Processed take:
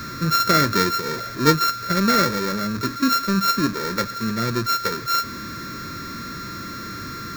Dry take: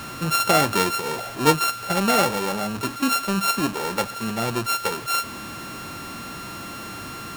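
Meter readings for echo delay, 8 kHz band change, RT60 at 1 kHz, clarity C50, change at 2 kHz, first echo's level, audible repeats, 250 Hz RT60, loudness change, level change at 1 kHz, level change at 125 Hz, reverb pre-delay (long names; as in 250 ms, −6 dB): no echo audible, −2.0 dB, no reverb audible, no reverb audible, +0.5 dB, no echo audible, no echo audible, no reverb audible, +1.5 dB, +1.5 dB, +4.0 dB, no reverb audible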